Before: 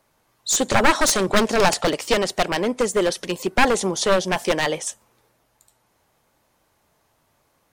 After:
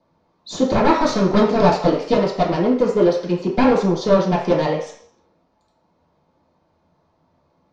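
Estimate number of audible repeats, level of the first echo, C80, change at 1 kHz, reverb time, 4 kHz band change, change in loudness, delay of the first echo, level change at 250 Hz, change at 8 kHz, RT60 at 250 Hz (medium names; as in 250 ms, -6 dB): no echo, no echo, 9.5 dB, +1.5 dB, 0.55 s, -6.5 dB, +2.5 dB, no echo, +7.0 dB, under -15 dB, 0.50 s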